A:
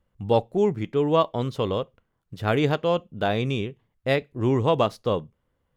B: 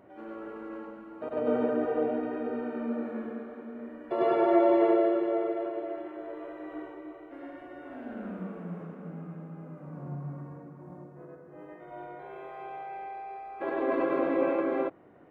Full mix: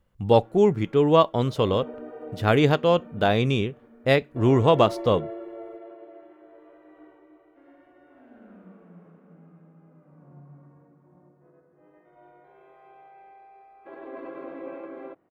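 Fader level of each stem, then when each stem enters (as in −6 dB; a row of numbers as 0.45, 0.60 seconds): +3.0, −11.0 decibels; 0.00, 0.25 seconds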